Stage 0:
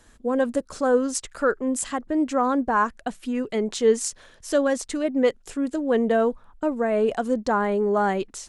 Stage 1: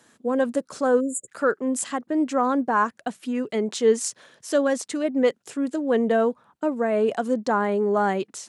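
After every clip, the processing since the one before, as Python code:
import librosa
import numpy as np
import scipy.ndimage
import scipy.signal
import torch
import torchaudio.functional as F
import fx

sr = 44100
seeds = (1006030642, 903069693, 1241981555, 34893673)

y = scipy.signal.sosfilt(scipy.signal.butter(4, 130.0, 'highpass', fs=sr, output='sos'), x)
y = fx.spec_erase(y, sr, start_s=1.01, length_s=0.27, low_hz=590.0, high_hz=6800.0)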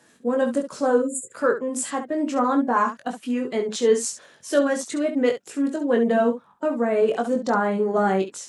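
y = fx.spec_quant(x, sr, step_db=15)
y = fx.room_early_taps(y, sr, ms=(21, 68), db=(-4.5, -9.5))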